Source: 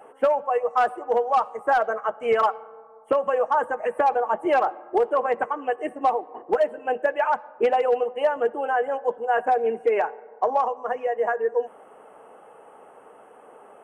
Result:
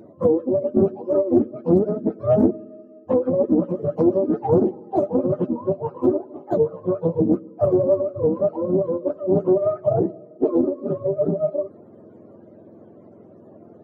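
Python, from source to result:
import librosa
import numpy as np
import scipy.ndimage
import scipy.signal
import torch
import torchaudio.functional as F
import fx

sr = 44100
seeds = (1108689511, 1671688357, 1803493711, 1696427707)

y = fx.octave_mirror(x, sr, pivot_hz=530.0)
y = fx.doppler_dist(y, sr, depth_ms=0.27)
y = F.gain(torch.from_numpy(y), 4.0).numpy()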